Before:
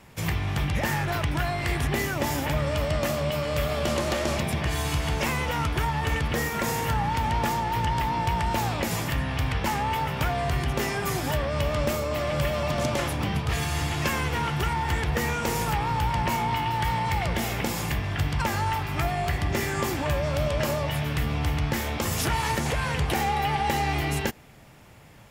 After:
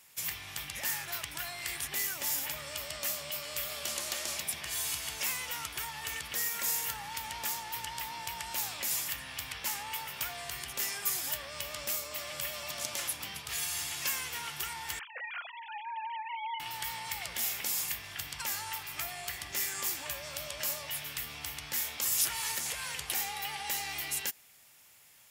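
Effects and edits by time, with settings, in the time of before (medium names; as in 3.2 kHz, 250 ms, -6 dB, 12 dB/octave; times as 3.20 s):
14.99–16.60 s: formants replaced by sine waves
whole clip: pre-emphasis filter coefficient 0.97; trim +2.5 dB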